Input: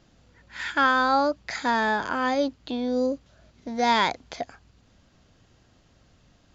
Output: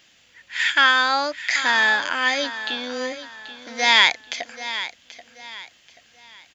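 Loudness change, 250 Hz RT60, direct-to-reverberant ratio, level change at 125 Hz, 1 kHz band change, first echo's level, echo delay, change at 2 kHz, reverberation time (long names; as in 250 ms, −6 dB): +5.5 dB, no reverb audible, no reverb audible, can't be measured, +0.5 dB, −13.0 dB, 783 ms, +9.5 dB, no reverb audible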